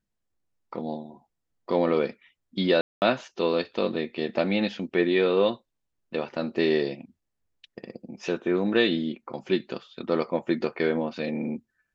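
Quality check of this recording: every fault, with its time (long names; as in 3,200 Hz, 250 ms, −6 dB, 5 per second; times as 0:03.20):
0:02.81–0:03.02: drop-out 209 ms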